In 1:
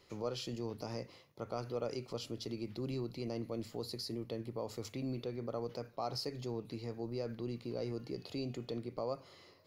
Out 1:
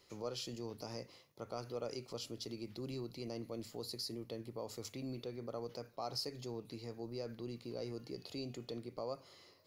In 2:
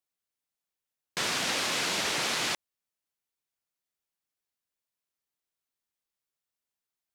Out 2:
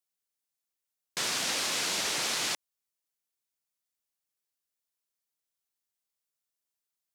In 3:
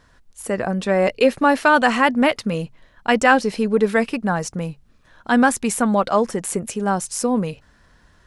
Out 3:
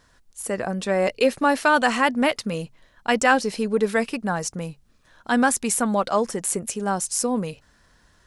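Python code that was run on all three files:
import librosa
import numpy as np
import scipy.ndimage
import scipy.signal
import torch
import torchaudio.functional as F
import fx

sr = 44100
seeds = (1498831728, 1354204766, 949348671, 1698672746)

y = fx.bass_treble(x, sr, bass_db=-2, treble_db=6)
y = F.gain(torch.from_numpy(y), -3.5).numpy()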